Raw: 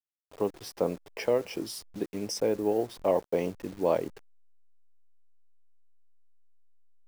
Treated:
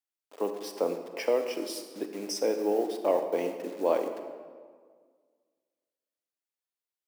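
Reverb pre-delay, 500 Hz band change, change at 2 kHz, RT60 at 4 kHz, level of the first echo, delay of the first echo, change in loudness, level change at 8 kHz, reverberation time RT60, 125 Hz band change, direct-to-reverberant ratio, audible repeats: 32 ms, +0.5 dB, +1.0 dB, 1.1 s, no echo, no echo, 0.0 dB, +0.5 dB, 1.8 s, under -10 dB, 6.5 dB, no echo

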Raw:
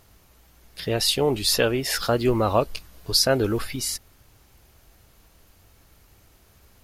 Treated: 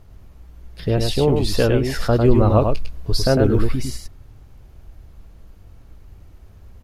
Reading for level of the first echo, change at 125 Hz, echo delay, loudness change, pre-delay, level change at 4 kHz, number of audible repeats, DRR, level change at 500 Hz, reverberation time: -4.5 dB, +11.0 dB, 102 ms, +3.5 dB, no reverb, -5.0 dB, 1, no reverb, +4.5 dB, no reverb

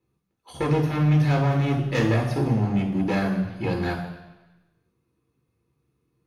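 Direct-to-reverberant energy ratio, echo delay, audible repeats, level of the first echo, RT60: -0.5 dB, no echo, no echo, no echo, 1.1 s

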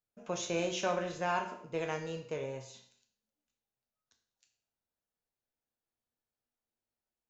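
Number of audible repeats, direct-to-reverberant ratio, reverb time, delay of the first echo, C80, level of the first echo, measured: no echo, 3.0 dB, 0.60 s, no echo, 11.0 dB, no echo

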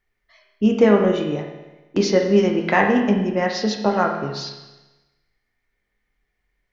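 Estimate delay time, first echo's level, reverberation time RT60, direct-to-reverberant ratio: no echo, no echo, 1.1 s, 2.0 dB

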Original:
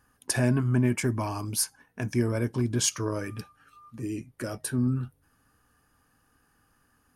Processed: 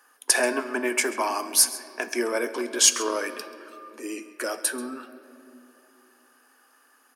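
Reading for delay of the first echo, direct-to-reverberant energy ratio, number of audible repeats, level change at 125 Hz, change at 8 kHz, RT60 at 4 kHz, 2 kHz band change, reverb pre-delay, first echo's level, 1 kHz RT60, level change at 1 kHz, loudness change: 135 ms, 10.5 dB, 1, under -35 dB, +9.0 dB, 1.7 s, +9.0 dB, 5 ms, -18.5 dB, 2.5 s, +8.5 dB, +4.5 dB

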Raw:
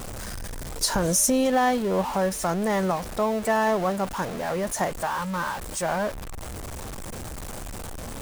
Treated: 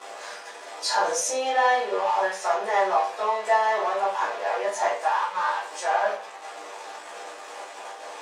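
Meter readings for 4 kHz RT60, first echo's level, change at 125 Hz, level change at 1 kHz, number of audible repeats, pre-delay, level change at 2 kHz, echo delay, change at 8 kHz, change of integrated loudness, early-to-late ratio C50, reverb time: 0.35 s, no echo, under -30 dB, +4.5 dB, no echo, 10 ms, +3.0 dB, no echo, -5.5 dB, +0.5 dB, 5.0 dB, 0.40 s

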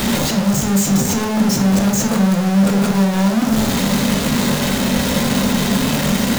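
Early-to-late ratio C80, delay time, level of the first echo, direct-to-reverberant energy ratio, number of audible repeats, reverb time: 10.0 dB, no echo, no echo, 2.0 dB, no echo, 0.55 s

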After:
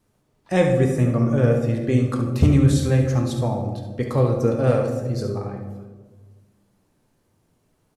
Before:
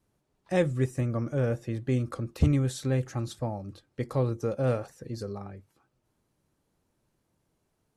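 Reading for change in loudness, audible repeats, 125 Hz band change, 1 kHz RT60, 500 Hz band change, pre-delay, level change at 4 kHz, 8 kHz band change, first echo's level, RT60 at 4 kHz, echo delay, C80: +9.5 dB, 1, +9.5 dB, 1.1 s, +9.0 dB, 4 ms, +8.0 dB, +8.0 dB, -9.0 dB, 0.75 s, 70 ms, 8.0 dB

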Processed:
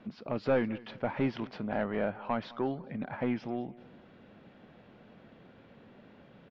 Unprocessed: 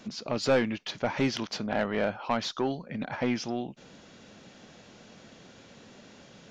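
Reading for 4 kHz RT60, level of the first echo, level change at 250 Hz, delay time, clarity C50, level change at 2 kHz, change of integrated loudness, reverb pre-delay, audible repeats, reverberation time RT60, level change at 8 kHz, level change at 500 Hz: no reverb, -21.0 dB, -2.5 dB, 207 ms, no reverb, -6.0 dB, -3.5 dB, no reverb, 2, no reverb, no reading, -3.5 dB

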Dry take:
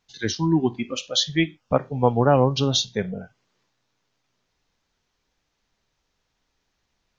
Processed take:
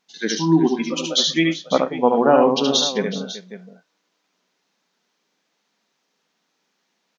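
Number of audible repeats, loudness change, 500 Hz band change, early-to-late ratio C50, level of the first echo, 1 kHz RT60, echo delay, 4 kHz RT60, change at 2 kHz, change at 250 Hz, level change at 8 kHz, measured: 4, +3.5 dB, +4.5 dB, no reverb, -3.5 dB, no reverb, 73 ms, no reverb, +4.5 dB, +4.5 dB, no reading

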